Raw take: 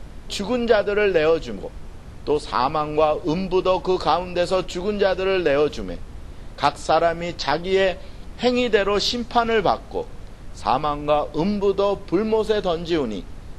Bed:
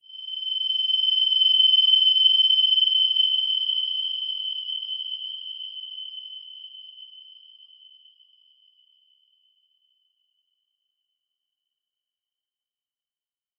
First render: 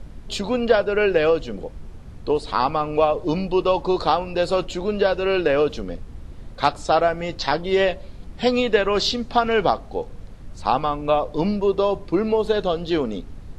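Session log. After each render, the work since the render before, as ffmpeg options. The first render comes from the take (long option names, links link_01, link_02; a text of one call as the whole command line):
ffmpeg -i in.wav -af "afftdn=noise_reduction=6:noise_floor=-39" out.wav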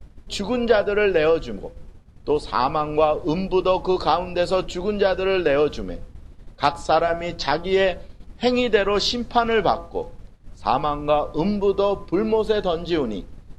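ffmpeg -i in.wav -af "bandreject=frequency=169:width_type=h:width=4,bandreject=frequency=338:width_type=h:width=4,bandreject=frequency=507:width_type=h:width=4,bandreject=frequency=676:width_type=h:width=4,bandreject=frequency=845:width_type=h:width=4,bandreject=frequency=1014:width_type=h:width=4,bandreject=frequency=1183:width_type=h:width=4,bandreject=frequency=1352:width_type=h:width=4,bandreject=frequency=1521:width_type=h:width=4,bandreject=frequency=1690:width_type=h:width=4,agate=range=-33dB:threshold=-29dB:ratio=3:detection=peak" out.wav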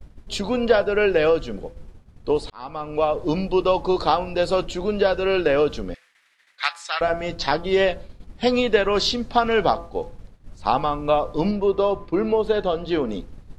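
ffmpeg -i in.wav -filter_complex "[0:a]asettb=1/sr,asplit=3[link_01][link_02][link_03];[link_01]atrim=end=5.944[link_04];[link_02]atrim=start=5.94:end=7.01,asetpts=PTS-STARTPTS,afade=type=in:duration=0.004:curve=qsin,afade=type=out:start_time=1.066:duration=0.004:curve=qsin,highpass=frequency=1900:width_type=q:width=2.9[link_05];[link_03]atrim=start=7.006[link_06];[link_04][link_05]acrossfade=duration=0.004:curve1=hsin:curve2=qsin[link_07];[link_07][link_06]acrossfade=duration=0.004:curve1=qsin:curve2=hsin,asettb=1/sr,asplit=3[link_08][link_09][link_10];[link_08]atrim=end=11.514[link_11];[link_09]atrim=start=11.51:end=13.09,asetpts=PTS-STARTPTS,afade=type=in:duration=0.004:curve=qsin,afade=type=out:start_time=1.576:duration=0.004:curve=qsin,bass=frequency=250:gain=-2,treble=frequency=4000:gain=-8[link_12];[link_10]atrim=start=13.086[link_13];[link_11][link_12]acrossfade=duration=0.004:curve1=hsin:curve2=qsin[link_14];[link_14][link_13]acrossfade=duration=0.004:curve1=qsin:curve2=hsin,asplit=2[link_15][link_16];[link_15]atrim=end=2.5,asetpts=PTS-STARTPTS,afade=type=out:start_time=2.496:duration=0.004:curve=hsin[link_17];[link_16]atrim=start=2.5,asetpts=PTS-STARTPTS,afade=type=in:duration=0.73[link_18];[link_17][link_18]concat=n=2:v=0:a=1" out.wav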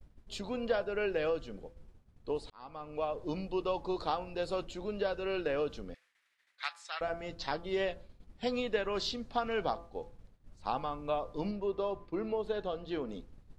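ffmpeg -i in.wav -af "volume=-14dB" out.wav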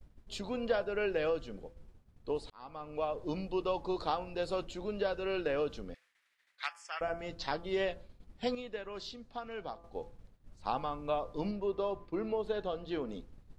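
ffmpeg -i in.wav -filter_complex "[0:a]asettb=1/sr,asplit=3[link_01][link_02][link_03];[link_01]atrim=end=6.664[link_04];[link_02]atrim=start=6.66:end=7.19,asetpts=PTS-STARTPTS,afade=type=in:duration=0.004:curve=qsin,afade=type=out:start_time=0.526:duration=0.004:curve=qsin,asuperstop=centerf=3900:order=4:qfactor=2.4[link_05];[link_03]atrim=start=7.186[link_06];[link_04][link_05]acrossfade=duration=0.004:curve1=hsin:curve2=qsin[link_07];[link_07][link_06]acrossfade=duration=0.004:curve1=qsin:curve2=hsin,asplit=3[link_08][link_09][link_10];[link_08]atrim=end=8.552[link_11];[link_09]atrim=start=8.548:end=9.842,asetpts=PTS-STARTPTS,volume=-9dB[link_12];[link_10]atrim=start=9.838[link_13];[link_11][link_12]acrossfade=duration=0.004:curve1=hsin:curve2=hsin[link_14];[link_14][link_13]acrossfade=duration=0.004:curve1=hsin:curve2=hsin" out.wav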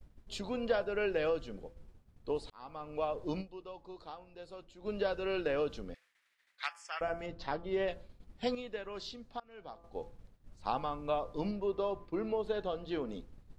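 ffmpeg -i in.wav -filter_complex "[0:a]asettb=1/sr,asplit=3[link_01][link_02][link_03];[link_01]atrim=end=7.264[link_04];[link_02]atrim=start=7.26:end=7.88,asetpts=PTS-STARTPTS,afade=type=in:duration=0.004:curve=qsin,afade=type=out:start_time=0.616:duration=0.004:curve=qsin,lowpass=frequency=1700:poles=1[link_05];[link_03]atrim=start=7.876[link_06];[link_04][link_05]acrossfade=duration=0.004:curve1=hsin:curve2=qsin[link_07];[link_07][link_06]acrossfade=duration=0.004:curve1=qsin:curve2=hsin,asplit=4[link_08][link_09][link_10][link_11];[link_08]atrim=end=3.64,asetpts=PTS-STARTPTS,afade=type=out:start_time=3.41:duration=0.23:curve=exp:silence=0.199526[link_12];[link_09]atrim=start=3.64:end=4.64,asetpts=PTS-STARTPTS,volume=-14dB[link_13];[link_10]atrim=start=4.64:end=9.4,asetpts=PTS-STARTPTS,afade=type=in:duration=0.23:curve=exp:silence=0.199526,afade=type=out:start_time=4.756:duration=0.004:curve=hsin:silence=0.0630957[link_14];[link_11]atrim=start=9.4,asetpts=PTS-STARTPTS,afade=type=in:duration=0.61:silence=0.0630957[link_15];[link_12][link_13][link_14][link_15]concat=n=4:v=0:a=1" out.wav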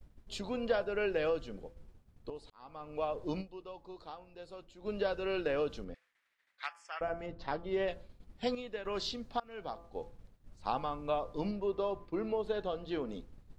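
ffmpeg -i in.wav -filter_complex "[0:a]asettb=1/sr,asplit=3[link_01][link_02][link_03];[link_01]atrim=end=5.844[link_04];[link_02]atrim=start=5.84:end=7.48,asetpts=PTS-STARTPTS,afade=type=in:duration=0.004:curve=qsin,afade=type=out:start_time=1.636:duration=0.004:curve=qsin,highshelf=frequency=2600:gain=-8[link_05];[link_03]atrim=start=7.476[link_06];[link_04][link_05]acrossfade=duration=0.004:curve1=hsin:curve2=qsin[link_07];[link_07][link_06]acrossfade=duration=0.004:curve1=qsin:curve2=hsin,asettb=1/sr,asplit=3[link_08][link_09][link_10];[link_08]atrim=end=8.854[link_11];[link_09]atrim=start=8.85:end=9.84,asetpts=PTS-STARTPTS,afade=type=in:duration=0.004:curve=qsin,afade=type=out:start_time=0.986:duration=0.004:curve=qsin,acontrast=71[link_12];[link_10]atrim=start=9.836[link_13];[link_11][link_12]acrossfade=duration=0.004:curve1=hsin:curve2=qsin[link_14];[link_14][link_13]acrossfade=duration=0.004:curve1=qsin:curve2=hsin,asplit=2[link_15][link_16];[link_15]atrim=end=2.3,asetpts=PTS-STARTPTS,afade=type=out:start_time=2.296:duration=0.004:curve=hsin:silence=0.237137[link_17];[link_16]atrim=start=2.3,asetpts=PTS-STARTPTS,afade=type=in:duration=0.98:curve=qsin:silence=0.237137[link_18];[link_17][link_18]concat=n=2:v=0:a=1" out.wav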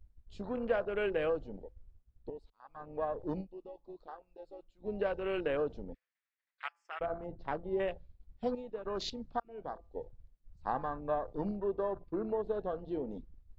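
ffmpeg -i in.wav -af "lowpass=7000,afwtdn=0.00794" out.wav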